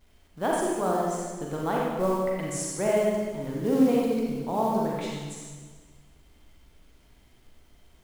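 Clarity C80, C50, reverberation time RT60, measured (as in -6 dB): 1.0 dB, -1.5 dB, 1.5 s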